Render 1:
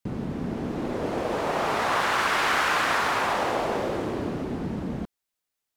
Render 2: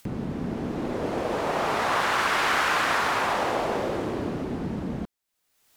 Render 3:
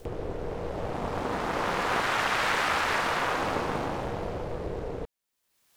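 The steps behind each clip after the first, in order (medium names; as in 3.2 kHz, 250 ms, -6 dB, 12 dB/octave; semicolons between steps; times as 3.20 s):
upward compressor, threshold -37 dBFS
ring modulator 240 Hz; reverse echo 177 ms -14.5 dB; loudspeaker Doppler distortion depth 0.67 ms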